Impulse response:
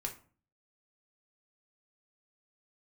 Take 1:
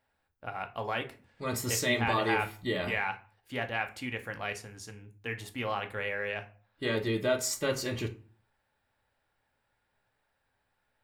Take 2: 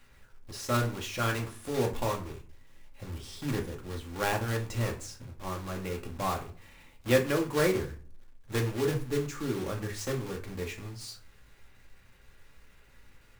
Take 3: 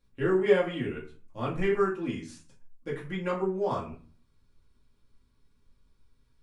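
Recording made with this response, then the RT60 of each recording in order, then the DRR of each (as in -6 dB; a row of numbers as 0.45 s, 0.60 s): 2; 0.40 s, 0.40 s, 0.40 s; 6.0 dB, 1.5 dB, -5.5 dB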